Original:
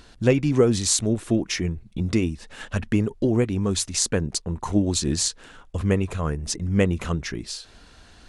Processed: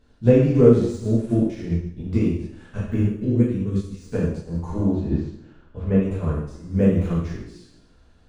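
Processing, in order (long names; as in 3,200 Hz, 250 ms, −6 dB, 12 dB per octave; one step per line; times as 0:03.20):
de-essing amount 75%
0:03.00–0:04.00: parametric band 790 Hz −14.5 dB 1.1 octaves
0:04.76–0:05.94: low-pass filter 2,400 Hz → 4,300 Hz 12 dB per octave
tilt shelving filter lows +6 dB, about 1,200 Hz
dense smooth reverb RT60 1 s, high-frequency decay 0.95×, DRR −8 dB
expander for the loud parts 1.5 to 1, over −23 dBFS
level −8 dB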